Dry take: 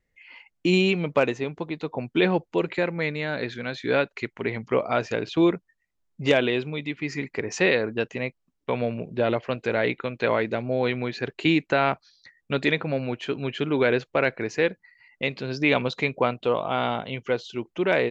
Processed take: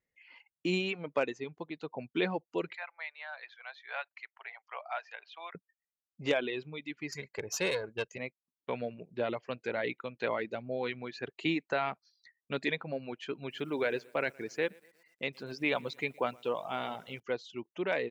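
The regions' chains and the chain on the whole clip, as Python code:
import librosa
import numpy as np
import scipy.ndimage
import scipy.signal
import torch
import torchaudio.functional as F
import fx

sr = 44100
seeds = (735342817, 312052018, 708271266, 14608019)

y = fx.chain(x, sr, fx.ellip_highpass(hz=710.0, order=4, stop_db=80),
    fx.air_absorb(metres=220.0), at=(2.75, 5.55))
y = fx.chain(y, sr, fx.bass_treble(bass_db=4, treble_db=11),
    fx.comb(ms=1.9, depth=0.61),
    fx.tube_stage(drive_db=15.0, bias=0.55), at=(7.12, 8.18))
y = fx.chain(y, sr, fx.peak_eq(hz=81.0, db=-2.0, octaves=1.6),
    fx.echo_crushed(ms=118, feedback_pct=55, bits=7, wet_db=-15.0), at=(13.37, 17.2))
y = fx.highpass(y, sr, hz=160.0, slope=6)
y = fx.dereverb_blind(y, sr, rt60_s=0.88)
y = y * librosa.db_to_amplitude(-8.5)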